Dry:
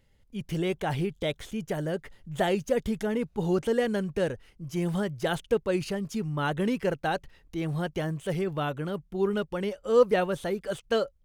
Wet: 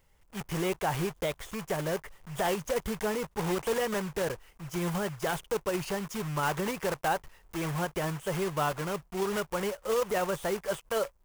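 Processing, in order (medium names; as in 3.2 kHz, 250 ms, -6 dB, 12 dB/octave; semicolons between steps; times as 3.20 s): block-companded coder 3-bit; peak limiter -20.5 dBFS, peak gain reduction 12 dB; fifteen-band graphic EQ 100 Hz -6 dB, 250 Hz -8 dB, 1 kHz +6 dB, 4 kHz -5 dB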